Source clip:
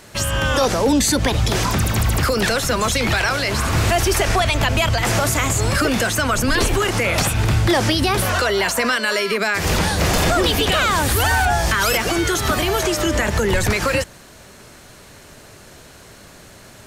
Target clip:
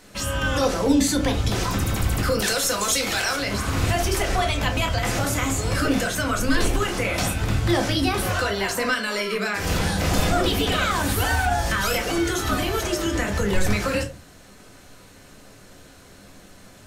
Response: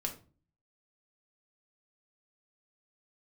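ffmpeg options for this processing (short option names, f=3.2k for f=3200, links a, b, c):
-filter_complex "[0:a]asettb=1/sr,asplit=3[a][b][c];[a]atrim=end=2.394[d];[b]atrim=start=2.39:end=3.36,asetpts=PTS-STARTPTS,afade=t=in:d=0.004:c=qsin,afade=t=out:st=0.966:d=0.004:c=qsin,bass=f=250:g=-11,treble=f=4k:g=9[e];[c]atrim=start=3.356[f];[d][e]acrossfade=d=0.004:c1=hsin:c2=qsin[g];[g][f]acrossfade=d=0.004:c1=qsin:c2=hsin[h];[1:a]atrim=start_sample=2205,asetrate=52920,aresample=44100[i];[h][i]afir=irnorm=-1:irlink=0,volume=-5dB"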